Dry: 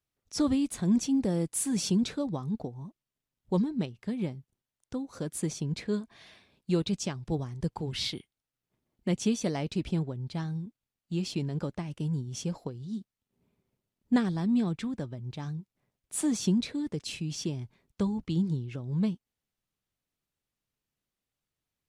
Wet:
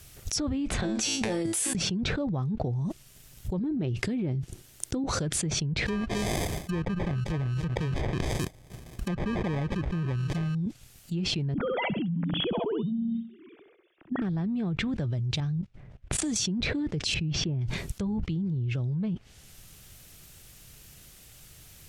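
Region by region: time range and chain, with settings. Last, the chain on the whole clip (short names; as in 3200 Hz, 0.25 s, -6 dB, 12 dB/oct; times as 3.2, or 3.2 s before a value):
0.81–1.75 three-band isolator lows -15 dB, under 310 Hz, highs -13 dB, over 4200 Hz + negative-ratio compressor -39 dBFS, ratio -0.5 + resonator 110 Hz, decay 0.29 s, mix 90%
3.59–5.04 compressor, threshold -31 dBFS + bell 330 Hz +8.5 dB 0.7 oct
5.86–10.55 sample-rate reducer 1400 Hz + echo 0.265 s -20 dB
11.54–14.22 sine-wave speech + flutter echo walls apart 11.2 m, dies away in 0.41 s
15.4–16.36 low-pass opened by the level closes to 1900 Hz, open at -23.5 dBFS + low shelf 120 Hz +9.5 dB + level quantiser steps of 21 dB
17.14–17.61 LPF 3500 Hz + high shelf 2100 Hz -11 dB
whole clip: treble ducked by the level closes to 2000 Hz, closed at -28 dBFS; graphic EQ 250/500/1000/2000/4000 Hz -10/-5/-10/-4/-4 dB; fast leveller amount 100%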